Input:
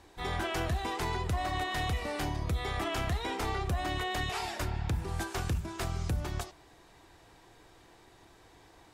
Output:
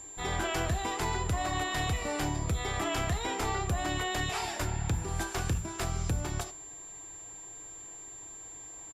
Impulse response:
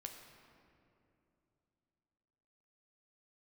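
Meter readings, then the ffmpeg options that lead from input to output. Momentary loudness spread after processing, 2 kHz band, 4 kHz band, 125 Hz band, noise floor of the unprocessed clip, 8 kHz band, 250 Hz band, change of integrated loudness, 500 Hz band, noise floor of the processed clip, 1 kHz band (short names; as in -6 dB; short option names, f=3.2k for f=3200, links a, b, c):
12 LU, +1.5 dB, +1.5 dB, +1.0 dB, -59 dBFS, +9.5 dB, +2.0 dB, +0.5 dB, +1.5 dB, -46 dBFS, +1.0 dB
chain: -filter_complex "[0:a]aeval=exprs='val(0)+0.00562*sin(2*PI*7300*n/s)':c=same,asplit=2[a][b];[1:a]atrim=start_sample=2205,atrim=end_sample=6174,asetrate=66150,aresample=44100[c];[b][c]afir=irnorm=-1:irlink=0,volume=5.5dB[d];[a][d]amix=inputs=2:normalize=0,aresample=32000,aresample=44100,volume=-3dB"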